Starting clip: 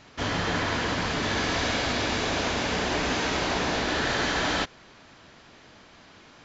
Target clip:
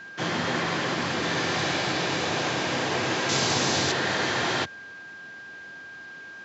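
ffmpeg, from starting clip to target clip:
-filter_complex "[0:a]afreqshift=68,aeval=exprs='val(0)+0.01*sin(2*PI*1600*n/s)':c=same,asettb=1/sr,asplit=3[a][b][c];[a]atrim=end=3.294[d];[b]atrim=start=3.29:end=3.92,asetpts=PTS-STARTPTS,afade=t=in:d=0.004:c=qsin,afade=t=out:st=0.626:d=0.004:c=qsin,bass=f=250:g=5,treble=f=4k:g=12[e];[c]atrim=start=3.916[f];[d][e]acrossfade=d=0.004:c1=hsin:c2=qsin[g];[g][f]acrossfade=d=0.004:c1=qsin:c2=hsin"

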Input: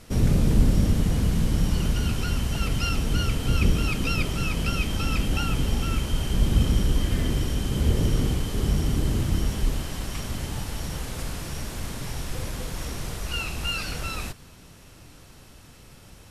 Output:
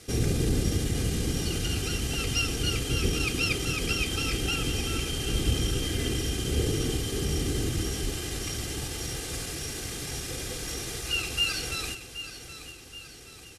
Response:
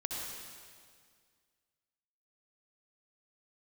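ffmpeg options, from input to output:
-filter_complex "[0:a]asplit=2[a][b];[1:a]atrim=start_sample=2205,atrim=end_sample=3969[c];[b][c]afir=irnorm=-1:irlink=0,volume=-24.5dB[d];[a][d]amix=inputs=2:normalize=0,aeval=exprs='val(0)+0.00158*(sin(2*PI*50*n/s)+sin(2*PI*2*50*n/s)/2+sin(2*PI*3*50*n/s)/3+sin(2*PI*4*50*n/s)/4+sin(2*PI*5*50*n/s)/5)':c=same,highpass=f=170:p=1,equalizer=f=960:w=1.7:g=-9.5,atempo=1.2,lowpass=9.6k,highshelf=f=6.9k:g=8.5,aecho=1:1:2.5:0.52,aecho=1:1:775|1550|2325|3100|3875:0.251|0.123|0.0603|0.0296|0.0145"

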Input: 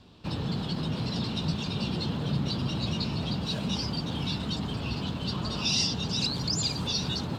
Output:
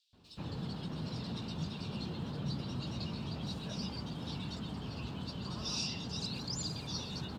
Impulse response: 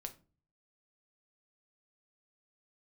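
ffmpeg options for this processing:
-filter_complex "[0:a]acrossover=split=3400[a][b];[a]adelay=130[c];[c][b]amix=inputs=2:normalize=0,volume=-9dB"

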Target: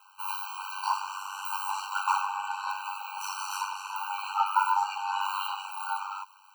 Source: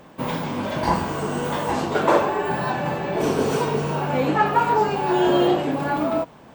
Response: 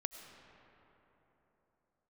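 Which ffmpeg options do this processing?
-filter_complex "[0:a]highshelf=f=8k:g=4.5[a];[1:a]atrim=start_sample=2205,atrim=end_sample=3087[b];[a][b]afir=irnorm=-1:irlink=0,aeval=exprs='val(0)*sin(2*PI*48*n/s)':c=same,acrossover=split=140|440|6300[c][d][e][f];[d]acrusher=bits=3:mix=0:aa=0.5[g];[c][g][e][f]amix=inputs=4:normalize=0,highshelf=f=2.7k:g=4,afftfilt=real='re*eq(mod(floor(b*sr/1024/780),2),1)':imag='im*eq(mod(floor(b*sr/1024/780),2),1)':win_size=1024:overlap=0.75"

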